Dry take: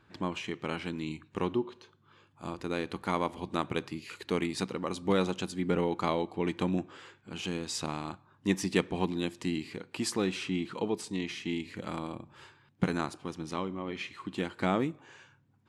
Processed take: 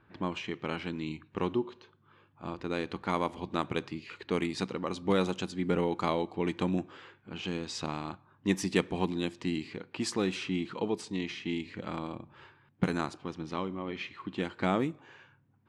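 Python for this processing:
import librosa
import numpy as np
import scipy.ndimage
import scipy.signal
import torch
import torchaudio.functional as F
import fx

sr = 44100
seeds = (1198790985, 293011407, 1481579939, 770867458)

y = fx.env_lowpass(x, sr, base_hz=2500.0, full_db=-24.5)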